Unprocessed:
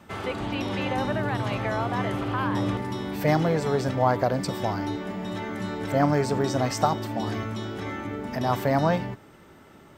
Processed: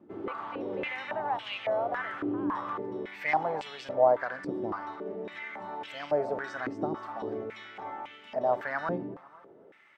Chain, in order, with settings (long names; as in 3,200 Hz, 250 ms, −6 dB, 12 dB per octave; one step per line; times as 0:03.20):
on a send: repeating echo 245 ms, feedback 44%, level −20 dB
on the sum: band-pass on a step sequencer 3.6 Hz 330–2,900 Hz
level +4.5 dB